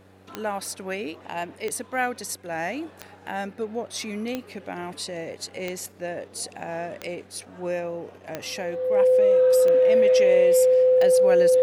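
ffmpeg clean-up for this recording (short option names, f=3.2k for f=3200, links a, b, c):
-af "adeclick=t=4,bandreject=f=95:t=h:w=4,bandreject=f=190:t=h:w=4,bandreject=f=285:t=h:w=4,bandreject=f=380:t=h:w=4,bandreject=f=475:t=h:w=4,bandreject=f=510:w=30"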